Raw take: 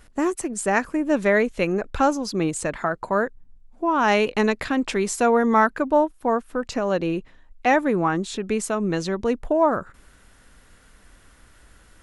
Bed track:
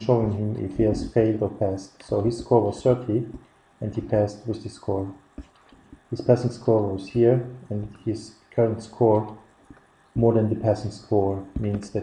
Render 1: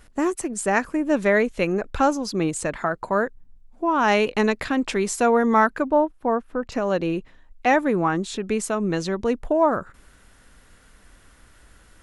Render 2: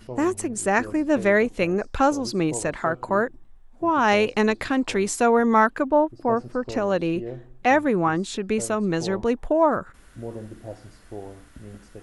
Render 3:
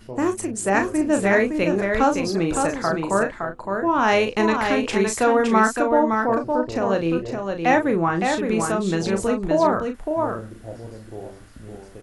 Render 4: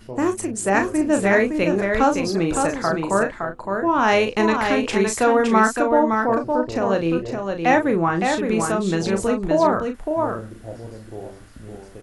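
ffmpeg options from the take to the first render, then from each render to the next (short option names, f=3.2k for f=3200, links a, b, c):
-filter_complex "[0:a]asettb=1/sr,asplit=3[a][b][c];[a]atrim=end=5.894[d];[b]atrim=start=5.89:end=6.72,asetpts=PTS-STARTPTS,afade=t=in:d=0.004:c=qsin,afade=t=out:st=0.826:d=0.004:c=qsin,lowpass=f=1.8k:p=1[e];[c]atrim=start=6.716[f];[d][e]acrossfade=d=0.004:c1=hsin:c2=qsin[g];[g][f]acrossfade=d=0.004:c1=qsin:c2=hsin"
-filter_complex "[1:a]volume=-16dB[a];[0:a][a]amix=inputs=2:normalize=0"
-filter_complex "[0:a]asplit=2[a][b];[b]adelay=36,volume=-7dB[c];[a][c]amix=inputs=2:normalize=0,asplit=2[d][e];[e]aecho=0:1:564:0.562[f];[d][f]amix=inputs=2:normalize=0"
-af "volume=1dB"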